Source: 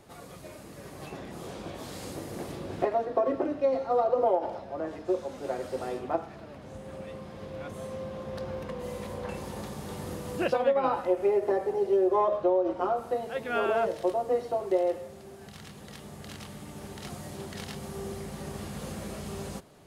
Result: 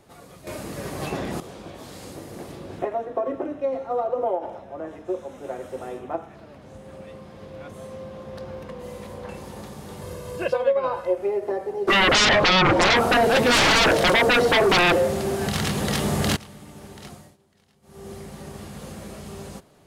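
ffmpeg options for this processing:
-filter_complex "[0:a]asettb=1/sr,asplit=3[s0][s1][s2];[s0]atrim=end=2.794[s3];[s1]atrim=start=2.79:end=6.35,asetpts=PTS-STARTPTS,afade=t=in:d=0.004:c=qsin,afade=t=out:st=3.556:d=0.004:c=qsin,equalizer=f=4600:t=o:w=0.28:g=-13.5[s4];[s2]atrim=start=6.346[s5];[s3][s4]acrossfade=d=0.004:c1=hsin:c2=qsin[s6];[s6][s5]acrossfade=d=0.004:c1=qsin:c2=hsin,asettb=1/sr,asplit=3[s7][s8][s9];[s7]atrim=end=10.014[s10];[s8]atrim=start=10.01:end=11.18,asetpts=PTS-STARTPTS,afade=t=in:d=0.004:c=qsin,afade=t=out:st=1.166:d=0.004:c=qsin,aecho=1:1:1.9:0.65,atrim=end_sample=51597[s11];[s9]atrim=start=11.176[s12];[s10][s11]acrossfade=d=0.004:c1=hsin:c2=qsin[s13];[s13][s12]acrossfade=d=0.004:c1=qsin:c2=hsin,asplit=3[s14][s15][s16];[s14]afade=t=out:st=11.87:d=0.02[s17];[s15]aeval=exprs='0.2*sin(PI/2*7.94*val(0)/0.2)':c=same,afade=t=in:st=11.87:d=0.02,afade=t=out:st=16.35:d=0.02[s18];[s16]afade=t=in:st=16.35:d=0.02[s19];[s17][s18][s19]amix=inputs=3:normalize=0,asplit=5[s20][s21][s22][s23][s24];[s20]atrim=end=0.472[s25];[s21]atrim=start=0.468:end=1.402,asetpts=PTS-STARTPTS,volume=3.98[s26];[s22]atrim=start=1.398:end=17.37,asetpts=PTS-STARTPTS,afade=t=out:st=15.662:d=0.31:silence=0.0668344[s27];[s23]atrim=start=17.37:end=17.82,asetpts=PTS-STARTPTS,volume=0.0668[s28];[s24]atrim=start=17.82,asetpts=PTS-STARTPTS,afade=t=in:d=0.31:silence=0.0668344[s29];[s25][s26]acrossfade=d=0.004:c1=hsin:c2=hsin[s30];[s27][s28][s29]concat=n=3:v=0:a=1[s31];[s30][s31]acrossfade=d=0.004:c1=hsin:c2=hsin"

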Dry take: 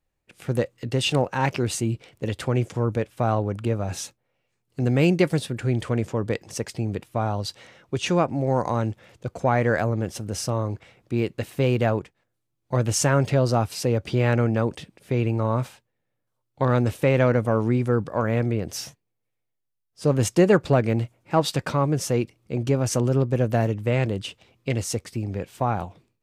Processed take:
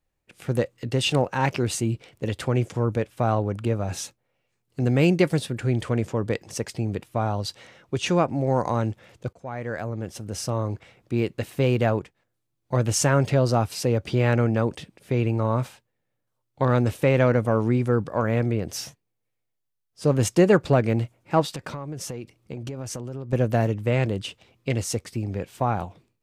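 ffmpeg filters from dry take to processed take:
-filter_complex "[0:a]asettb=1/sr,asplit=3[s0][s1][s2];[s0]atrim=end=21.444[s3];[s1]atrim=start=21.44:end=23.33,asetpts=PTS-STARTPTS,afade=t=in:d=0.004:c=qsin,afade=t=out:st=1.886:d=0.004:c=qsin,acompressor=threshold=0.0355:ratio=16:attack=3.2:release=140:knee=1:detection=peak[s4];[s2]atrim=start=23.326[s5];[s3][s4]acrossfade=d=0.004:c1=hsin:c2=qsin[s6];[s6][s5]acrossfade=d=0.004:c1=qsin:c2=hsin,asplit=2[s7][s8];[s7]atrim=end=9.33,asetpts=PTS-STARTPTS,afade=t=out:st=9.326:d=0.004:c=hsin:silence=0.105925[s9];[s8]atrim=start=9.33,asetpts=PTS-STARTPTS,afade=t=in:d=1.39:silence=0.105925[s10];[s9][s10]concat=n=2:v=0:a=1"

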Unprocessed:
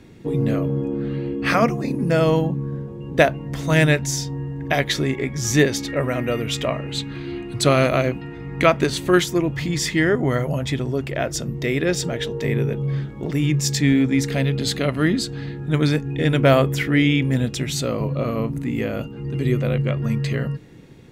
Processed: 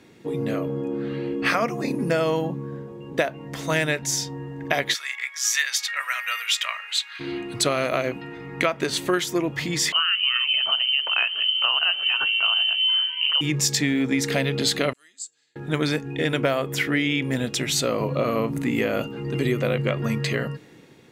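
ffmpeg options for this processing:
-filter_complex "[0:a]asplit=3[s0][s1][s2];[s0]afade=t=out:st=4.93:d=0.02[s3];[s1]highpass=f=1300:w=0.5412,highpass=f=1300:w=1.3066,afade=t=in:st=4.93:d=0.02,afade=t=out:st=7.19:d=0.02[s4];[s2]afade=t=in:st=7.19:d=0.02[s5];[s3][s4][s5]amix=inputs=3:normalize=0,asettb=1/sr,asplit=3[s6][s7][s8];[s6]atrim=end=9.924[s9];[s7]atrim=start=9.92:end=13.41,asetpts=PTS-STARTPTS,afade=t=in:d=0.004:c=qsin,afade=t=out:st=3.486:d=0.004:c=qsin,lowpass=f=2700:t=q:w=0.5098,lowpass=f=2700:t=q:w=0.6013,lowpass=f=2700:t=q:w=0.9,lowpass=f=2700:t=q:w=2.563,afreqshift=-3200[s10];[s8]atrim=start=13.406[s11];[s9][s10]acrossfade=d=0.004:c1=hsin:c2=qsin[s12];[s12][s11]acrossfade=d=0.004:c1=qsin:c2=hsin,asettb=1/sr,asplit=3[s13][s14][s15];[s13]atrim=end=14.934[s16];[s14]atrim=start=14.93:end=15.56,asetpts=PTS-STARTPTS,afade=t=in:d=0.004:c=qsin,afade=t=out:st=0.626:d=0.004:c=qsin,bandpass=f=7400:t=q:w=12[s17];[s15]atrim=start=15.556[s18];[s16][s17]acrossfade=d=0.004:c1=hsin:c2=qsin[s19];[s19][s18]acrossfade=d=0.004:c1=qsin:c2=hsin,dynaudnorm=f=290:g=7:m=3.76,highpass=f=420:p=1,acompressor=threshold=0.126:ratio=10"

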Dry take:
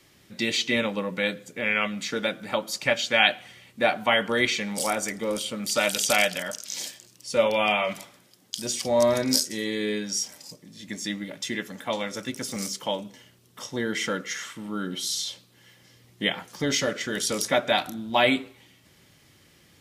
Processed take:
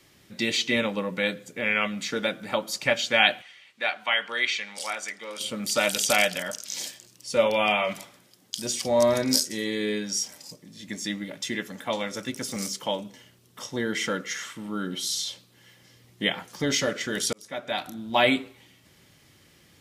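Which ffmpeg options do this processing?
-filter_complex "[0:a]asplit=3[s0][s1][s2];[s0]afade=t=out:st=3.41:d=0.02[s3];[s1]bandpass=f=2600:t=q:w=0.7,afade=t=in:st=3.41:d=0.02,afade=t=out:st=5.39:d=0.02[s4];[s2]afade=t=in:st=5.39:d=0.02[s5];[s3][s4][s5]amix=inputs=3:normalize=0,asplit=2[s6][s7];[s6]atrim=end=17.33,asetpts=PTS-STARTPTS,afade=t=out:st=17.326:d=0.004:c=hsin[s8];[s7]atrim=start=17.33,asetpts=PTS-STARTPTS,afade=t=in:d=0.87[s9];[s8][s9]concat=n=2:v=0:a=1"

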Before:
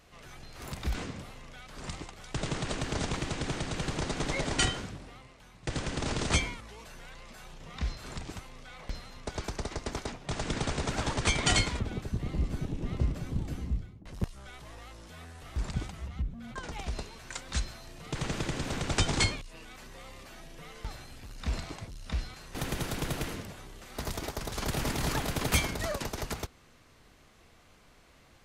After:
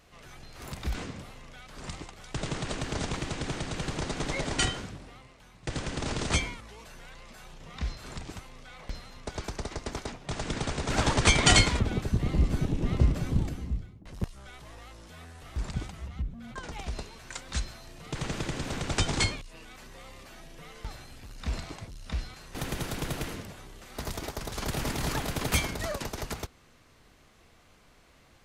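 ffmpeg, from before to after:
-filter_complex "[0:a]asplit=3[s0][s1][s2];[s0]atrim=end=10.902[s3];[s1]atrim=start=10.898:end=13.492,asetpts=PTS-STARTPTS,volume=2[s4];[s2]atrim=start=13.488[s5];[s3][s4]acrossfade=d=0.004:c1=hsin:c2=hsin[s6];[s6][s5]acrossfade=d=0.004:c1=hsin:c2=hsin"

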